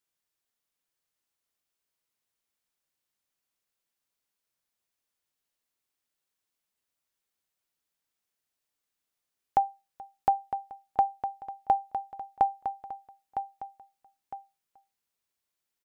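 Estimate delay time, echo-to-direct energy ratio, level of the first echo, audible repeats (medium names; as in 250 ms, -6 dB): 958 ms, -8.5 dB, -9.0 dB, 2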